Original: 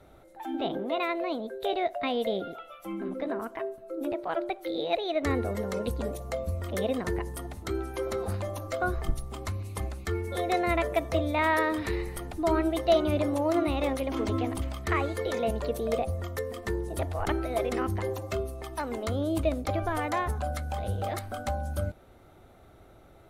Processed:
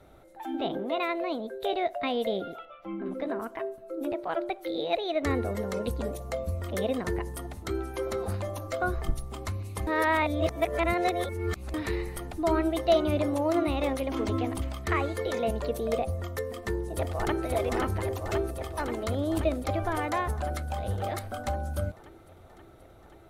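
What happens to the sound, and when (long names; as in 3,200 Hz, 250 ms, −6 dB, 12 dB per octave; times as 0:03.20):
0:02.65–0:03.06: high-frequency loss of the air 270 metres
0:09.87–0:11.74: reverse
0:16.44–0:17.44: delay throw 530 ms, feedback 75%, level −3.5 dB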